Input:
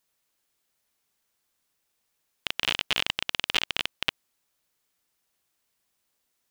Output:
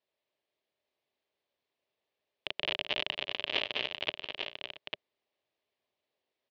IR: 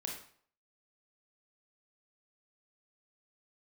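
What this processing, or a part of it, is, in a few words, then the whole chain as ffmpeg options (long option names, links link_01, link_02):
guitar cabinet: -filter_complex "[0:a]asplit=3[link_01][link_02][link_03];[link_01]afade=type=out:start_time=3.46:duration=0.02[link_04];[link_02]asplit=2[link_05][link_06];[link_06]adelay=33,volume=-12.5dB[link_07];[link_05][link_07]amix=inputs=2:normalize=0,afade=type=in:start_time=3.46:duration=0.02,afade=type=out:start_time=3.98:duration=0.02[link_08];[link_03]afade=type=in:start_time=3.98:duration=0.02[link_09];[link_04][link_08][link_09]amix=inputs=3:normalize=0,highpass=98,equalizer=frequency=180:width_type=q:width=4:gain=-7,equalizer=frequency=400:width_type=q:width=4:gain=7,equalizer=frequency=600:width_type=q:width=4:gain=10,equalizer=frequency=1400:width_type=q:width=4:gain=-9,lowpass=frequency=4000:width=0.5412,lowpass=frequency=4000:width=1.3066,aecho=1:1:216|675|847:0.355|0.112|0.501,volume=-6dB"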